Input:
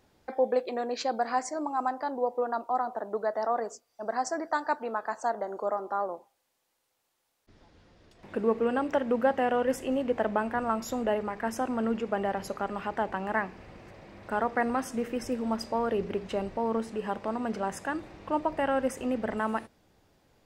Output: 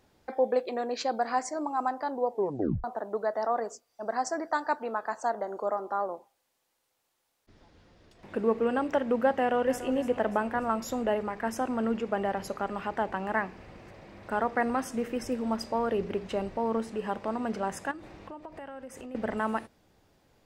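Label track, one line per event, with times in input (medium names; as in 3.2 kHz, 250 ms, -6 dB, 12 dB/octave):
2.320000	2.320000	tape stop 0.52 s
9.360000	9.890000	echo throw 290 ms, feedback 50%, level -13 dB
17.910000	19.150000	compression, threshold -40 dBFS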